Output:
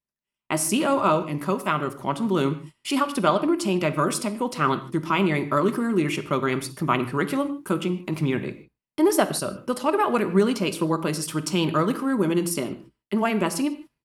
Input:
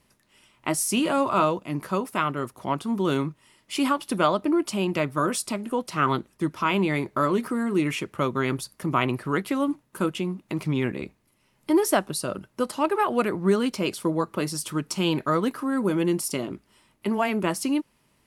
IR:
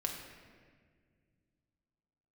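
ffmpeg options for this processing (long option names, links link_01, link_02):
-filter_complex "[0:a]agate=range=-32dB:threshold=-52dB:ratio=16:detection=peak,atempo=1.3,asplit=2[link_01][link_02];[1:a]atrim=start_sample=2205,afade=type=out:start_time=0.21:duration=0.01,atrim=end_sample=9702[link_03];[link_02][link_03]afir=irnorm=-1:irlink=0,volume=-3dB[link_04];[link_01][link_04]amix=inputs=2:normalize=0,volume=-3dB"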